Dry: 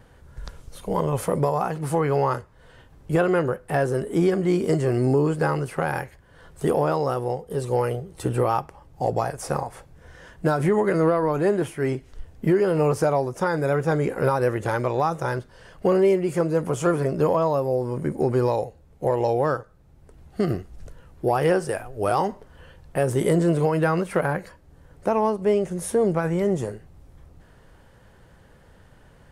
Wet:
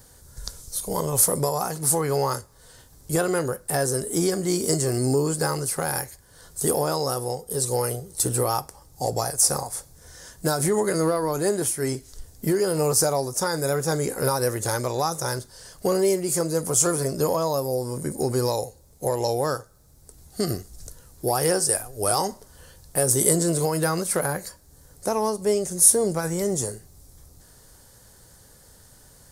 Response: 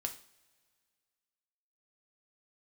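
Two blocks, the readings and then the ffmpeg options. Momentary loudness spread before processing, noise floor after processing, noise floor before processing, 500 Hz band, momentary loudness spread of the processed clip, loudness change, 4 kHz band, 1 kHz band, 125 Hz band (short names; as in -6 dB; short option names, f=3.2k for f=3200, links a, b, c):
9 LU, -53 dBFS, -53 dBFS, -2.5 dB, 11 LU, 0.0 dB, +10.5 dB, -2.5 dB, -3.0 dB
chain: -filter_complex "[0:a]asplit=2[a][b];[1:a]atrim=start_sample=2205,asetrate=79380,aresample=44100[c];[b][c]afir=irnorm=-1:irlink=0,volume=-3.5dB[d];[a][d]amix=inputs=2:normalize=0,aexciter=amount=9.8:drive=4.3:freq=4.1k,volume=-5dB"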